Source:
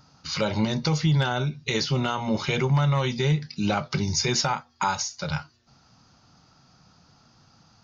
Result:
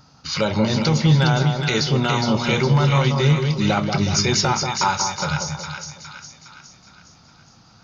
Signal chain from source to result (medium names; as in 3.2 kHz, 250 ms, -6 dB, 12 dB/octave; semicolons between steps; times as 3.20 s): two-band feedback delay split 1.3 kHz, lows 184 ms, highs 412 ms, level -5 dB; trim +4.5 dB